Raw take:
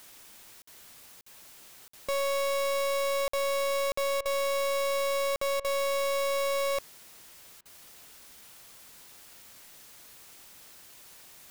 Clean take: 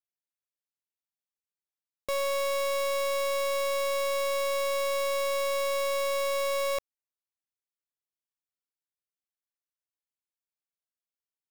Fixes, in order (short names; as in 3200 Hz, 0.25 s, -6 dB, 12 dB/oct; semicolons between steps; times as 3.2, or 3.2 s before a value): interpolate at 0.62/1.21/1.88/3.28/3.92/5.36, 54 ms; interpolate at 4.21/5.6/7.61, 44 ms; noise print and reduce 30 dB